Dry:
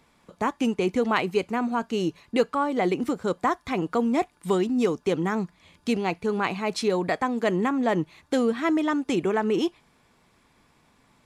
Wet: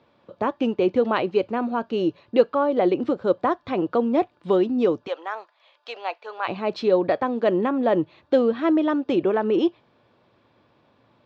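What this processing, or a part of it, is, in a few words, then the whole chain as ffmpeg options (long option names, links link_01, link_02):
guitar cabinet: -filter_complex "[0:a]highpass=94,equalizer=frequency=110:width_type=q:width=4:gain=8,equalizer=frequency=170:width_type=q:width=4:gain=-4,equalizer=frequency=340:width_type=q:width=4:gain=5,equalizer=frequency=560:width_type=q:width=4:gain=10,equalizer=frequency=2100:width_type=q:width=4:gain=-7,lowpass=frequency=4100:width=0.5412,lowpass=frequency=4100:width=1.3066,asplit=3[link_01][link_02][link_03];[link_01]afade=type=out:start_time=5.06:duration=0.02[link_04];[link_02]highpass=frequency=660:width=0.5412,highpass=frequency=660:width=1.3066,afade=type=in:start_time=5.06:duration=0.02,afade=type=out:start_time=6.47:duration=0.02[link_05];[link_03]afade=type=in:start_time=6.47:duration=0.02[link_06];[link_04][link_05][link_06]amix=inputs=3:normalize=0"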